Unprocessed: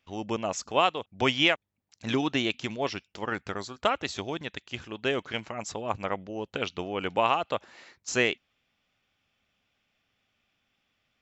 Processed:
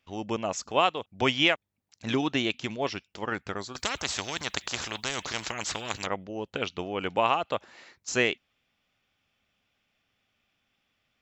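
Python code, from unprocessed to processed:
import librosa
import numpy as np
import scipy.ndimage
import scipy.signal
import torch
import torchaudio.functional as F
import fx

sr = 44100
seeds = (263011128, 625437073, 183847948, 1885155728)

y = fx.spectral_comp(x, sr, ratio=4.0, at=(3.75, 6.07))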